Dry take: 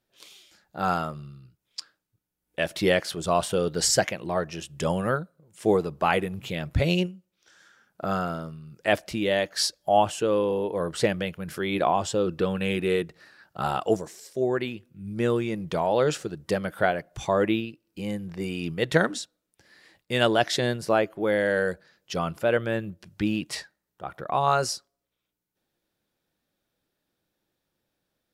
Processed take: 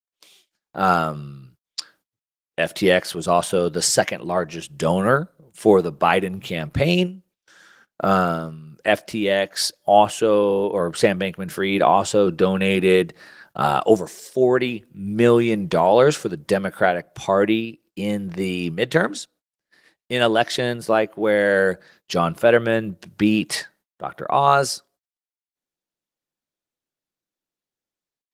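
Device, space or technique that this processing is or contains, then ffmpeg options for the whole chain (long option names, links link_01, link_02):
video call: -af "highpass=130,dynaudnorm=framelen=430:gausssize=3:maxgain=16dB,agate=range=-28dB:threshold=-50dB:ratio=16:detection=peak,volume=-1dB" -ar 48000 -c:a libopus -b:a 24k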